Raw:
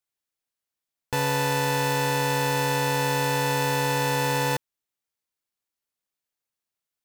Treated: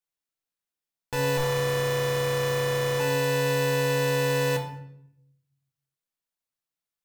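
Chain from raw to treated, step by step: 1.37–3.00 s: comb filter that takes the minimum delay 1.7 ms; simulated room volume 180 m³, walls mixed, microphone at 0.69 m; trim -5 dB

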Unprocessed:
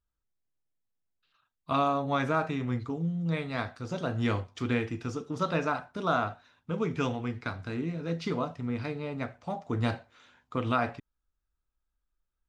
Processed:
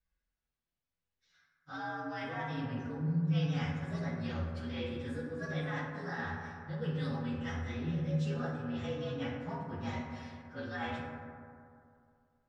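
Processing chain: frequency axis rescaled in octaves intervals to 114%; low-pass 3.7 kHz 12 dB/octave; treble shelf 2.3 kHz +11 dB; reverse; compression 10:1, threshold -40 dBFS, peak gain reduction 18.5 dB; reverse; reverberation RT60 2.4 s, pre-delay 3 ms, DRR -2 dB

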